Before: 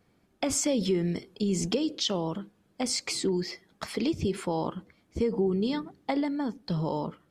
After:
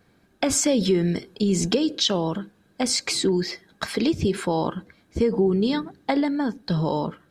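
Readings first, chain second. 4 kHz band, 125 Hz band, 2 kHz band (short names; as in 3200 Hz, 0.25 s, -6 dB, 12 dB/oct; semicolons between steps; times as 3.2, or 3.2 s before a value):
+7.0 dB, +6.0 dB, +7.5 dB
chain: small resonant body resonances 1600/3900 Hz, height 12 dB, ringing for 35 ms; gain +6 dB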